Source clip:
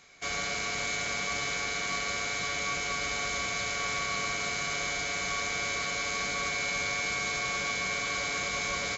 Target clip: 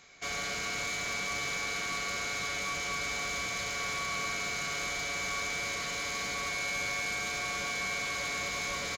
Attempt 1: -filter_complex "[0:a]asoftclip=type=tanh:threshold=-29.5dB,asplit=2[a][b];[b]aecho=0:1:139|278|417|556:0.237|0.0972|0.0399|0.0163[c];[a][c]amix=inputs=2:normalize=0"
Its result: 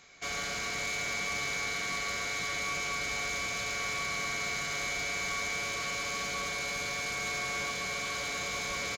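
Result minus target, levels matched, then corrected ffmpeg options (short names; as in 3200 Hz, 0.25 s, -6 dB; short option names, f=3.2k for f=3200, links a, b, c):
echo 78 ms early
-filter_complex "[0:a]asoftclip=type=tanh:threshold=-29.5dB,asplit=2[a][b];[b]aecho=0:1:217|434|651|868:0.237|0.0972|0.0399|0.0163[c];[a][c]amix=inputs=2:normalize=0"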